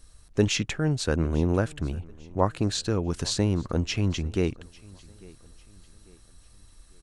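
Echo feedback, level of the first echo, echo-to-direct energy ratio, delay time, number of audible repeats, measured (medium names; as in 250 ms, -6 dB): 40%, -23.5 dB, -23.0 dB, 847 ms, 2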